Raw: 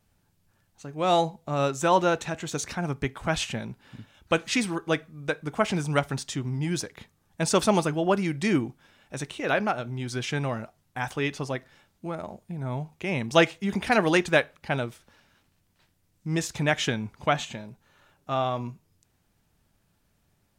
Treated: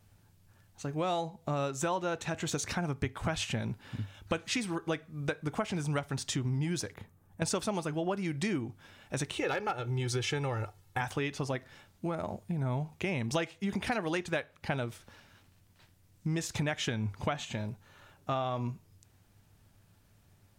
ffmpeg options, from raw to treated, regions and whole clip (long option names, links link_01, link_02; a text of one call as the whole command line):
ffmpeg -i in.wav -filter_complex "[0:a]asettb=1/sr,asplit=3[link_01][link_02][link_03];[link_01]atrim=end=6.944[link_04];[link_02]atrim=start=6.94:end=7.42,asetpts=PTS-STARTPTS,afade=type=in:duration=0.004:curve=qsin,afade=type=out:start_time=0.476:duration=0.004:curve=qsin,equalizer=frequency=4500:width_type=o:width=2.4:gain=-12.5,acompressor=threshold=-46dB:ratio=3:attack=3.2:release=140:knee=1:detection=peak[link_05];[link_03]atrim=start=7.416[link_06];[link_04][link_05]acrossfade=duration=0.004:curve1=hsin:curve2=qsin[link_07];[link_07][link_06]acrossfade=duration=0.004:curve1=qsin:curve2=hsin,asettb=1/sr,asplit=3[link_08][link_09][link_10];[link_08]atrim=end=9.364[link_11];[link_09]atrim=start=9.36:end=11.01,asetpts=PTS-STARTPTS,afade=type=in:duration=0.004:curve=qsin,afade=type=out:start_time=1.646:duration=0.004:curve=qsin,aecho=1:1:2.3:0.7,atrim=end_sample=72765,asoftclip=type=hard:threshold=-16dB[link_12];[link_10]atrim=start=11.006[link_13];[link_11][link_12]acrossfade=duration=0.004:curve1=hsin:curve2=qsin[link_14];[link_14][link_13]acrossfade=duration=0.004:curve1=qsin:curve2=hsin,acompressor=threshold=-33dB:ratio=6,equalizer=frequency=100:width_type=o:width=0.26:gain=11.5,volume=3dB" out.wav